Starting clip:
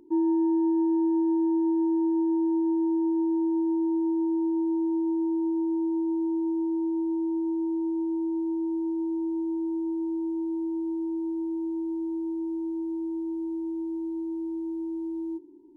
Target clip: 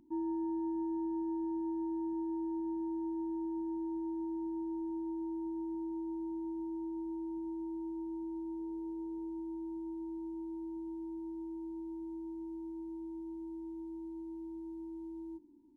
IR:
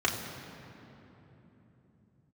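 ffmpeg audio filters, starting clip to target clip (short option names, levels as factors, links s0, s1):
-filter_complex "[0:a]asettb=1/sr,asplit=3[s0][s1][s2];[s0]atrim=end=8.594[s3];[s1]atrim=start=8.59:end=9.29,asetpts=PTS-STARTPTS,afade=t=in:d=0.004:c=qsin,afade=t=out:st=0.696:d=0.004:c=qsin,aeval=exprs='val(0)+0.00501*sin(2*PI*430*n/s)':c=same[s4];[s2]atrim=start=9.286[s5];[s3][s4]acrossfade=d=0.004:c1=hsin:c2=qsin[s6];[s6][s5]acrossfade=d=0.004:c1=qsin:c2=hsin,firequalizer=gain_entry='entry(230,0);entry(400,-21);entry(700,-8)':delay=0.05:min_phase=1"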